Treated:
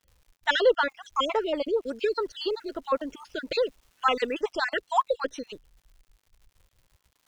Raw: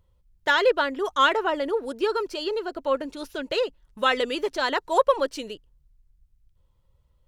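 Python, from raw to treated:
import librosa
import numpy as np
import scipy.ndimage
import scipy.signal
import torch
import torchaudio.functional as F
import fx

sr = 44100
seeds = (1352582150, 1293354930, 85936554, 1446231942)

y = fx.spec_dropout(x, sr, seeds[0], share_pct=45)
y = scipy.signal.sosfilt(scipy.signal.butter(4, 7500.0, 'lowpass', fs=sr, output='sos'), y)
y = fx.dmg_crackle(y, sr, seeds[1], per_s=fx.steps((0.0, 200.0), (1.81, 550.0), (4.41, 180.0)), level_db=-51.0)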